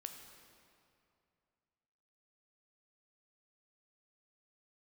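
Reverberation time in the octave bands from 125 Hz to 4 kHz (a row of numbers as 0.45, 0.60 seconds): 2.9, 2.6, 2.6, 2.5, 2.2, 1.8 seconds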